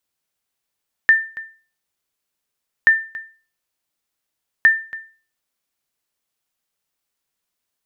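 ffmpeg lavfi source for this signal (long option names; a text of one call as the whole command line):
ffmpeg -f lavfi -i "aevalsrc='0.596*(sin(2*PI*1790*mod(t,1.78))*exp(-6.91*mod(t,1.78)/0.38)+0.112*sin(2*PI*1790*max(mod(t,1.78)-0.28,0))*exp(-6.91*max(mod(t,1.78)-0.28,0)/0.38))':duration=5.34:sample_rate=44100" out.wav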